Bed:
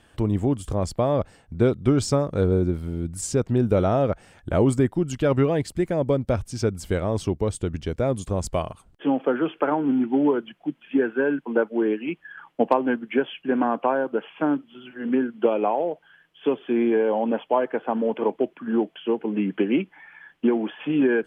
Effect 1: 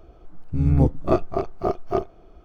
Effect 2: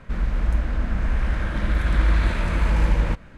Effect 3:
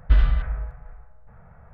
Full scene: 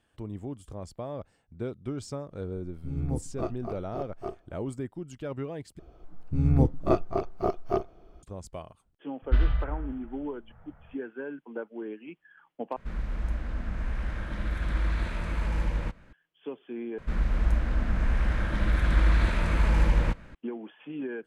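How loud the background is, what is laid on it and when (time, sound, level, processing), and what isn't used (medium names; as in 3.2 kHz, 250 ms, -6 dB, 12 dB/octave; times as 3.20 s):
bed -15 dB
2.31 s: add 1 -13 dB
5.79 s: replace with 1 -4 dB
9.22 s: add 3 -5.5 dB
12.76 s: replace with 2 -9 dB
16.98 s: replace with 2 -3 dB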